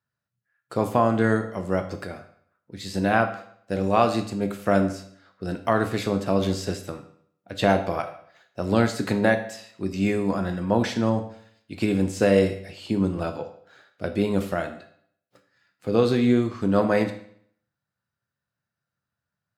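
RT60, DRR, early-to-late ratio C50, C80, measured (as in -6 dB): 0.60 s, 6.0 dB, 10.5 dB, 13.5 dB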